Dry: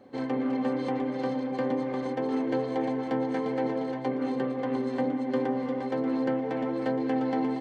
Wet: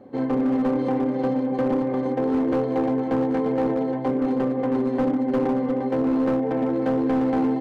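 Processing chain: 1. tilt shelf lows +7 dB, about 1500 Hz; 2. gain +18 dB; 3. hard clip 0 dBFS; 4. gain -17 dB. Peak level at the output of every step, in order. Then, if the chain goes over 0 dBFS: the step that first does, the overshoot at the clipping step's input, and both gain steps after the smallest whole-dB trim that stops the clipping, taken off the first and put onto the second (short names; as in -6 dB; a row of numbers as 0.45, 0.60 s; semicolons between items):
-10.0, +8.0, 0.0, -17.0 dBFS; step 2, 8.0 dB; step 2 +10 dB, step 4 -9 dB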